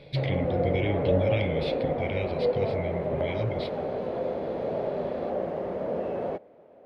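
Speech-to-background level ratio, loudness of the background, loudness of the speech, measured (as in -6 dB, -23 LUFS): -2.0 dB, -30.0 LUFS, -32.0 LUFS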